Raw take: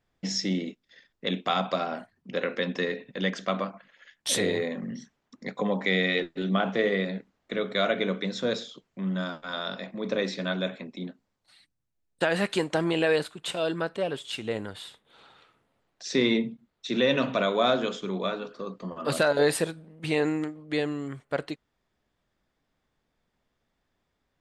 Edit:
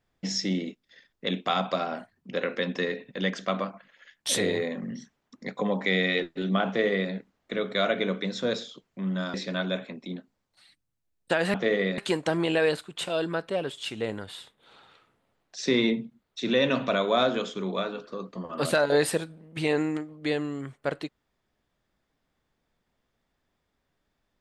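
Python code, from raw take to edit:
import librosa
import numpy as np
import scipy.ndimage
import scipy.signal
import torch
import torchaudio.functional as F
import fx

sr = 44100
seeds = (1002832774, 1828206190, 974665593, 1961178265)

y = fx.edit(x, sr, fx.duplicate(start_s=6.67, length_s=0.44, to_s=12.45),
    fx.cut(start_s=9.34, length_s=0.91), tone=tone)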